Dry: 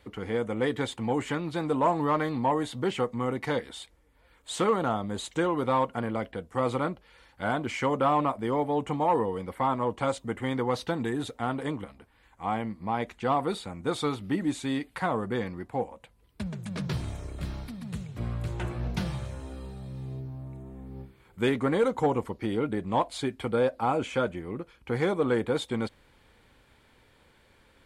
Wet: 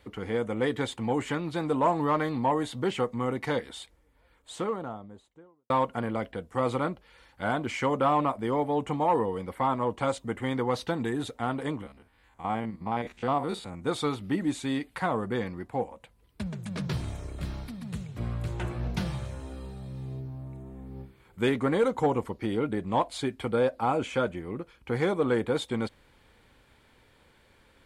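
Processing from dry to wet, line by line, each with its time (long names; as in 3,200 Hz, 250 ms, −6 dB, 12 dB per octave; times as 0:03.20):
0:03.74–0:05.70: fade out and dull
0:11.82–0:13.82: spectrum averaged block by block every 50 ms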